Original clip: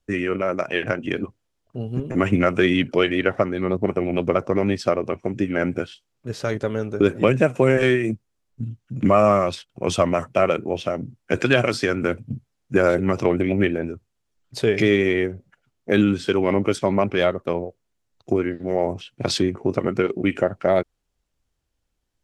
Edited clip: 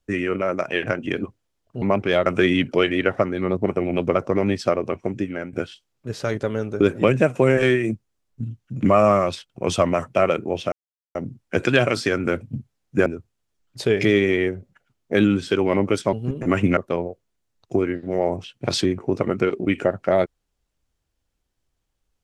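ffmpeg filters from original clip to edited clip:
ffmpeg -i in.wav -filter_complex "[0:a]asplit=8[link_01][link_02][link_03][link_04][link_05][link_06][link_07][link_08];[link_01]atrim=end=1.822[link_09];[link_02]atrim=start=16.898:end=17.342[link_10];[link_03]atrim=start=2.458:end=5.73,asetpts=PTS-STARTPTS,afade=type=out:start_time=2.822:duration=0.45:silence=0.158489[link_11];[link_04]atrim=start=5.73:end=10.92,asetpts=PTS-STARTPTS,afade=type=in:duration=0.004:curve=hsin:silence=0.158489,afade=type=out:start_time=5.186:duration=0.004:curve=hsin,apad=pad_dur=0.43[link_12];[link_05]atrim=start=10.92:end=12.832,asetpts=PTS-STARTPTS,afade=type=in:duration=0.004:curve=hsin[link_13];[link_06]atrim=start=13.828:end=16.902[link_14];[link_07]atrim=start=1.818:end=2.462[link_15];[link_08]atrim=start=17.338[link_16];[link_09][link_10]acrossfade=duration=0.004:curve1=hsin:curve2=hsin[link_17];[link_11][link_12][link_13]concat=n=3:v=0:a=1[link_18];[link_17][link_18]acrossfade=duration=0.004:curve1=hsin:curve2=hsin[link_19];[link_19][link_14]acrossfade=duration=0.004:curve1=hsin:curve2=hsin[link_20];[link_20][link_15]acrossfade=duration=0.004:curve1=hsin:curve2=hsin[link_21];[link_21][link_16]acrossfade=duration=0.004:curve1=hsin:curve2=hsin" out.wav

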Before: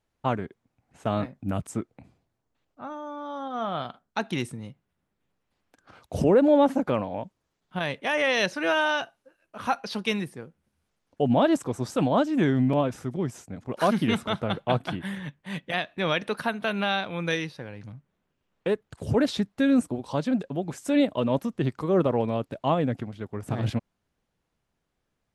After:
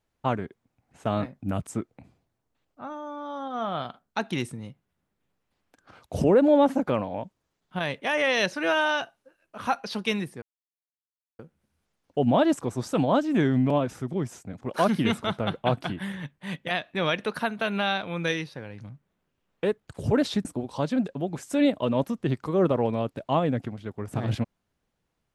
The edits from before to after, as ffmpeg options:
ffmpeg -i in.wav -filter_complex "[0:a]asplit=3[link_01][link_02][link_03];[link_01]atrim=end=10.42,asetpts=PTS-STARTPTS,afade=type=out:start_time=10.416:duration=0.004:curve=hsin,apad=pad_dur=0.97[link_04];[link_02]atrim=start=10.42:end=19.482,asetpts=PTS-STARTPTS,afade=type=in:duration=0.004:curve=hsin[link_05];[link_03]atrim=start=19.798[link_06];[link_04][link_05]concat=n=2:v=0:a=1[link_07];[link_07][link_06]acrossfade=duration=0.004:curve1=hsin:curve2=hsin" out.wav

